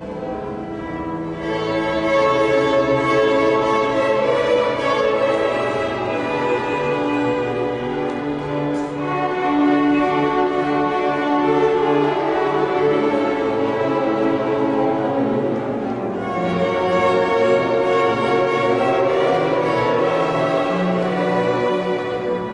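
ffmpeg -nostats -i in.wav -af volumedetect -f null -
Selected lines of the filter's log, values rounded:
mean_volume: -18.4 dB
max_volume: -5.7 dB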